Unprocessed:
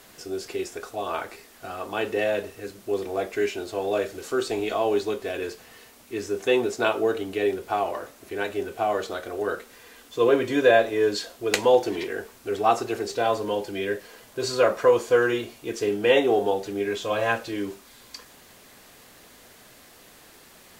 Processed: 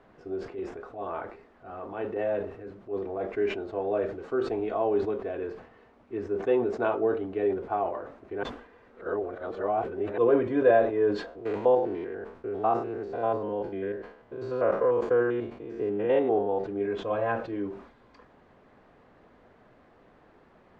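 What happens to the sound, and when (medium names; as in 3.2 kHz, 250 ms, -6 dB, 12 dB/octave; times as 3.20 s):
0.49–3.25 s: transient shaper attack -8 dB, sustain +1 dB
8.43–10.18 s: reverse
11.26–16.64 s: spectrogram pixelated in time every 100 ms
whole clip: low-pass 1.2 kHz 12 dB/octave; decay stretcher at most 100 dB/s; trim -2.5 dB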